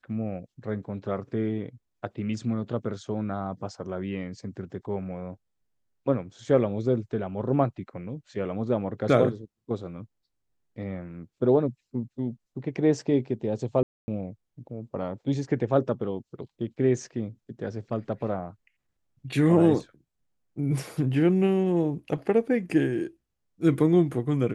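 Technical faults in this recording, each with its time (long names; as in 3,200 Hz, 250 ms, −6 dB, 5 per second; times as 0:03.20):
0:13.83–0:14.08: drop-out 250 ms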